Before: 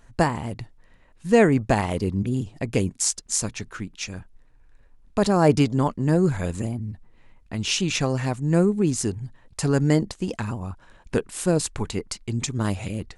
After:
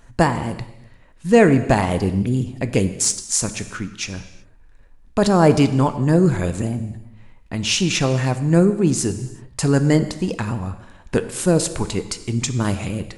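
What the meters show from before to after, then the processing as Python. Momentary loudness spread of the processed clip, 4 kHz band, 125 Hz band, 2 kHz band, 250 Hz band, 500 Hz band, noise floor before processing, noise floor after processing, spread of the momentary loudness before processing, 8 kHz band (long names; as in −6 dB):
15 LU, +4.5 dB, +4.5 dB, +4.5 dB, +4.5 dB, +4.0 dB, −54 dBFS, −48 dBFS, 15 LU, +4.5 dB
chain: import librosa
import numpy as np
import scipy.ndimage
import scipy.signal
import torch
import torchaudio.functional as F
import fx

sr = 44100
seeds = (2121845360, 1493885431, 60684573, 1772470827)

p1 = 10.0 ** (-16.5 / 20.0) * np.tanh(x / 10.0 ** (-16.5 / 20.0))
p2 = x + (p1 * librosa.db_to_amplitude(-11.0))
p3 = fx.rev_gated(p2, sr, seeds[0], gate_ms=400, shape='falling', drr_db=10.0)
y = p3 * librosa.db_to_amplitude(2.5)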